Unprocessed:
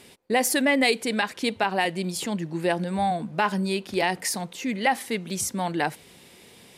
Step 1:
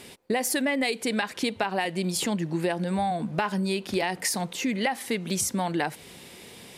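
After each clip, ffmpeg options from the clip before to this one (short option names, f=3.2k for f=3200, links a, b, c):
-af "acompressor=threshold=-28dB:ratio=6,volume=4.5dB"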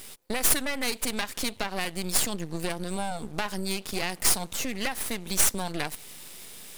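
-af "crystalizer=i=3.5:c=0,aeval=exprs='max(val(0),0)':c=same,volume=-2.5dB"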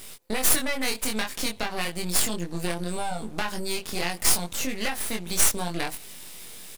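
-filter_complex "[0:a]asplit=2[a][b];[b]adelay=23,volume=-3.5dB[c];[a][c]amix=inputs=2:normalize=0"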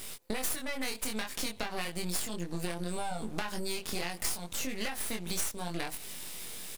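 -af "acompressor=threshold=-30dB:ratio=5"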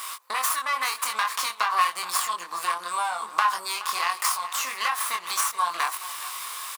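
-af "highpass=f=1.1k:t=q:w=12,aecho=1:1:422:0.168,volume=7dB"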